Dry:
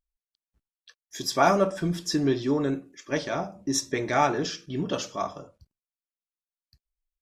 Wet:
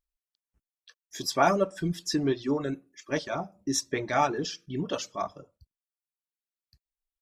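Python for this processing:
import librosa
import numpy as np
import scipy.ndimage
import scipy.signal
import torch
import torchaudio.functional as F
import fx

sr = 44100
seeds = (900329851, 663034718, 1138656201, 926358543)

y = fx.dereverb_blind(x, sr, rt60_s=0.97)
y = y * librosa.db_to_amplitude(-1.5)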